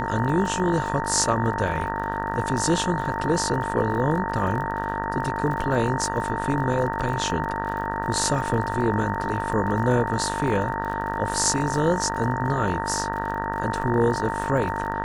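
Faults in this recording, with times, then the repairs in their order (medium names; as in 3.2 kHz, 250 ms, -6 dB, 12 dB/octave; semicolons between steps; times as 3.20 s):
buzz 50 Hz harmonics 38 -30 dBFS
crackle 37 per s -32 dBFS
whine 910 Hz -28 dBFS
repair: de-click; de-hum 50 Hz, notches 38; band-stop 910 Hz, Q 30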